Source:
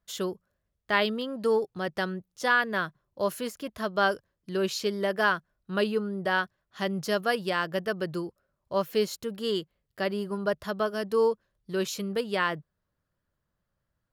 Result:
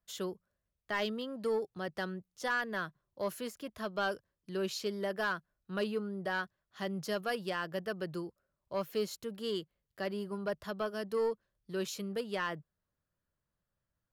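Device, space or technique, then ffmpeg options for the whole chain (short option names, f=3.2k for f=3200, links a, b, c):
one-band saturation: -filter_complex "[0:a]acrossover=split=200|4600[a][b][c];[b]asoftclip=type=tanh:threshold=-18.5dB[d];[a][d][c]amix=inputs=3:normalize=0,volume=-6.5dB"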